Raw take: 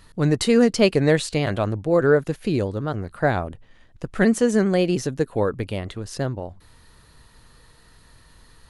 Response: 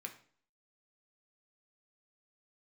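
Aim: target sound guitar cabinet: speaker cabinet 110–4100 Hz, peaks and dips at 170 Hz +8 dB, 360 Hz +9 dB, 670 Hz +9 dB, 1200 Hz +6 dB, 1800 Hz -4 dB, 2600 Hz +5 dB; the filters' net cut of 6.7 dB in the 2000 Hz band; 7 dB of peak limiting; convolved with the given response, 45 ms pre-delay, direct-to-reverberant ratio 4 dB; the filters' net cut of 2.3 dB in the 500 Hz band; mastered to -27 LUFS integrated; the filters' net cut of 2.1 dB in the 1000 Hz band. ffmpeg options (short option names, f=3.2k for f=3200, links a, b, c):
-filter_complex "[0:a]equalizer=f=500:t=o:g=-7.5,equalizer=f=1k:t=o:g=-6.5,equalizer=f=2k:t=o:g=-7,alimiter=limit=-15dB:level=0:latency=1,asplit=2[a][b];[1:a]atrim=start_sample=2205,adelay=45[c];[b][c]afir=irnorm=-1:irlink=0,volume=-1.5dB[d];[a][d]amix=inputs=2:normalize=0,highpass=110,equalizer=f=170:t=q:w=4:g=8,equalizer=f=360:t=q:w=4:g=9,equalizer=f=670:t=q:w=4:g=9,equalizer=f=1.2k:t=q:w=4:g=6,equalizer=f=1.8k:t=q:w=4:g=-4,equalizer=f=2.6k:t=q:w=4:g=5,lowpass=f=4.1k:w=0.5412,lowpass=f=4.1k:w=1.3066,volume=-4.5dB"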